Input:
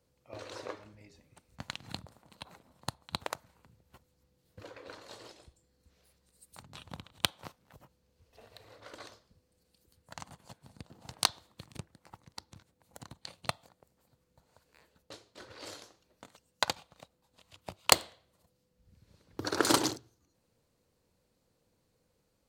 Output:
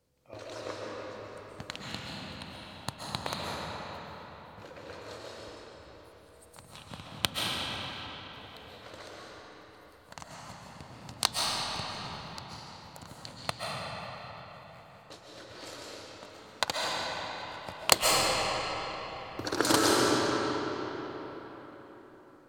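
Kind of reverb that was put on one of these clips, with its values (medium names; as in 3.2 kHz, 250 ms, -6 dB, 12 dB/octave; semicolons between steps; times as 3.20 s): algorithmic reverb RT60 4.7 s, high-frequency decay 0.65×, pre-delay 95 ms, DRR -4.5 dB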